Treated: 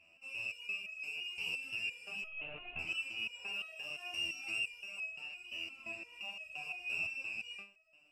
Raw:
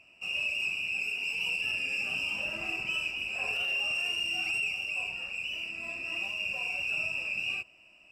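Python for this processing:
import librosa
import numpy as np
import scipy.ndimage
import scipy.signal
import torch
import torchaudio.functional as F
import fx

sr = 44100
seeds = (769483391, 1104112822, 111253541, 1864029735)

y = fx.lpc_monotone(x, sr, seeds[0], pitch_hz=150.0, order=10, at=(2.21, 2.79))
y = fx.resonator_held(y, sr, hz=5.8, low_hz=83.0, high_hz=640.0)
y = y * librosa.db_to_amplitude(3.0)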